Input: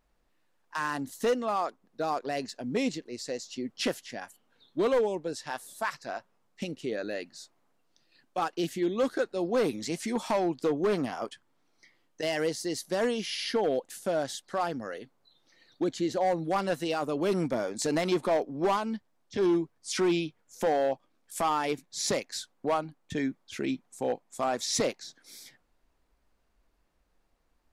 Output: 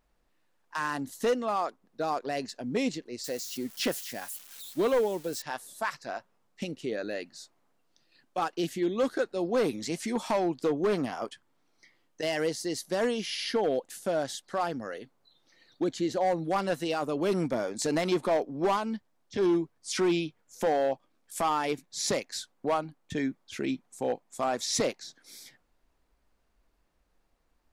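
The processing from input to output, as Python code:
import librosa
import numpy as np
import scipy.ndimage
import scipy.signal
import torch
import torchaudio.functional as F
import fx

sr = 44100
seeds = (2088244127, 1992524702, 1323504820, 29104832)

y = fx.crossing_spikes(x, sr, level_db=-35.0, at=(3.24, 5.42))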